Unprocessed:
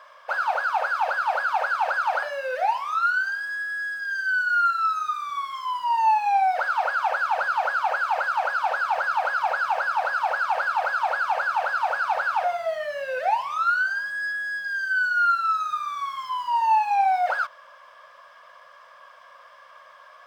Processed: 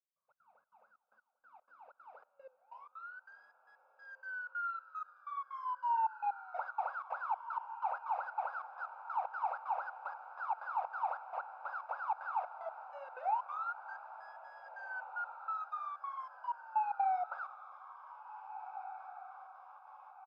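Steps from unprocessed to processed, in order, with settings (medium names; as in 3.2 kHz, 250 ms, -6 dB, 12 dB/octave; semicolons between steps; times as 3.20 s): high-pass 100 Hz; differentiator; band-stop 1.7 kHz, Q 7.1; comb 0.8 ms, depth 44%; in parallel at -2 dB: peak limiter -34 dBFS, peak gain reduction 9 dB; on the sum: low-pass sweep 160 Hz -> 800 Hz, 0.29–4.03 s; trance gate "..xx.xxx.xxx..x." 188 bpm -24 dB; echo that smears into a reverb 1826 ms, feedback 41%, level -11.5 dB; on a send at -23 dB: reverberation RT60 5.5 s, pre-delay 60 ms; on the sum: trim -1.5 dB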